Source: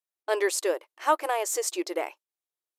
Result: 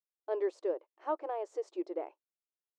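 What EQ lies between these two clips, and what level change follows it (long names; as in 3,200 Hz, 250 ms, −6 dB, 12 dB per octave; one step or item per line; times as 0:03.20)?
high-pass filter 310 Hz
head-to-tape spacing loss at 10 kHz 44 dB
parametric band 2,000 Hz −13.5 dB 2.6 octaves
0.0 dB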